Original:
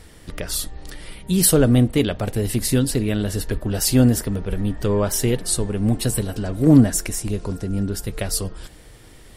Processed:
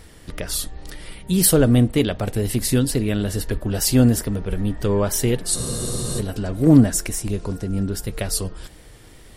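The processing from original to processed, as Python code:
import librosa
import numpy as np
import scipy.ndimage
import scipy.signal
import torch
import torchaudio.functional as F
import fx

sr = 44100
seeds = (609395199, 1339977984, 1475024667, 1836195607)

y = fx.wow_flutter(x, sr, seeds[0], rate_hz=2.1, depth_cents=28.0)
y = fx.spec_freeze(y, sr, seeds[1], at_s=5.57, hold_s=0.62)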